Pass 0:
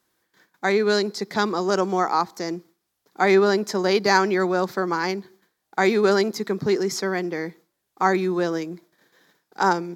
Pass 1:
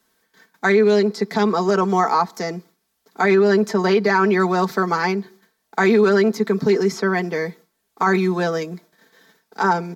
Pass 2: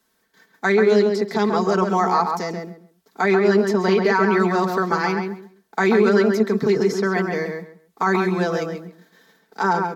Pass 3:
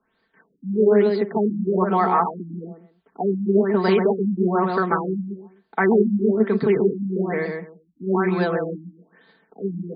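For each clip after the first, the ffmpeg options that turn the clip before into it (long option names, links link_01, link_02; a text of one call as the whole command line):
ffmpeg -i in.wav -filter_complex "[0:a]aecho=1:1:4.5:0.7,acrossover=split=190|2900[link_01][link_02][link_03];[link_03]acompressor=threshold=-39dB:ratio=6[link_04];[link_01][link_02][link_04]amix=inputs=3:normalize=0,alimiter=limit=-12dB:level=0:latency=1:release=34,volume=4dB" out.wav
ffmpeg -i in.wav -filter_complex "[0:a]asplit=2[link_01][link_02];[link_02]adelay=135,lowpass=frequency=2400:poles=1,volume=-4dB,asplit=2[link_03][link_04];[link_04]adelay=135,lowpass=frequency=2400:poles=1,volume=0.22,asplit=2[link_05][link_06];[link_06]adelay=135,lowpass=frequency=2400:poles=1,volume=0.22[link_07];[link_01][link_03][link_05][link_07]amix=inputs=4:normalize=0,volume=-2dB" out.wav
ffmpeg -i in.wav -af "afftfilt=real='re*lt(b*sr/1024,300*pow(5000/300,0.5+0.5*sin(2*PI*1.1*pts/sr)))':imag='im*lt(b*sr/1024,300*pow(5000/300,0.5+0.5*sin(2*PI*1.1*pts/sr)))':win_size=1024:overlap=0.75" out.wav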